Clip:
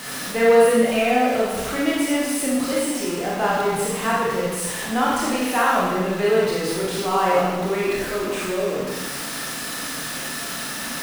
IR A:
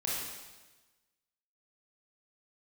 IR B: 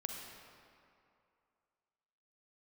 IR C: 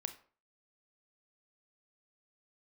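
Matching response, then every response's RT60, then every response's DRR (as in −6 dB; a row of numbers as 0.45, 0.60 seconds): A; 1.2, 2.5, 0.40 seconds; −6.0, 1.5, 8.5 decibels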